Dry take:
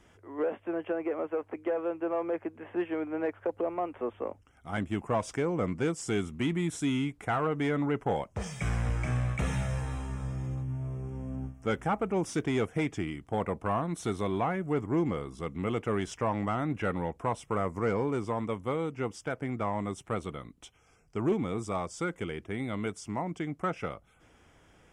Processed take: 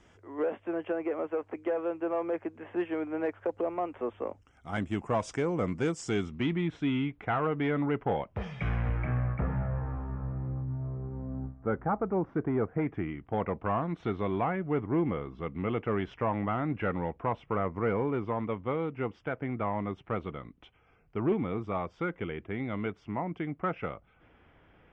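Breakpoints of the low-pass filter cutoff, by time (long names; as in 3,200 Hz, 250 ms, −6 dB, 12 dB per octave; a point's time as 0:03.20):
low-pass filter 24 dB per octave
0:05.96 7,900 Hz
0:06.71 3,400 Hz
0:08.62 3,400 Hz
0:09.48 1,500 Hz
0:12.65 1,500 Hz
0:13.37 3,000 Hz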